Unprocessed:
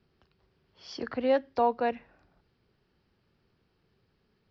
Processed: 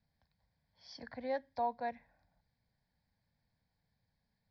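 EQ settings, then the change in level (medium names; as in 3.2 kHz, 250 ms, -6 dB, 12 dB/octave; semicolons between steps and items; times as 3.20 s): static phaser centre 1.9 kHz, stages 8; -7.5 dB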